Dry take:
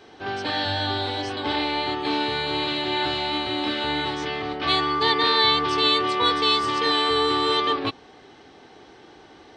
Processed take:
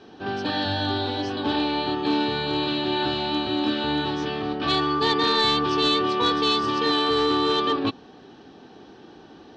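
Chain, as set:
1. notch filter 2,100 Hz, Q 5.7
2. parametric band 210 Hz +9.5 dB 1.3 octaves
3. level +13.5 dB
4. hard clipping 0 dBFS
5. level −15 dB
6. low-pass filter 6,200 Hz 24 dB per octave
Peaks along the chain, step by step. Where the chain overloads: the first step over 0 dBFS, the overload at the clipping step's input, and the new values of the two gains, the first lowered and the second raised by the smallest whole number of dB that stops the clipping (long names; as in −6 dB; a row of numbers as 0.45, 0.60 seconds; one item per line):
−8.0, −6.5, +7.0, 0.0, −15.0, −13.5 dBFS
step 3, 7.0 dB
step 3 +6.5 dB, step 5 −8 dB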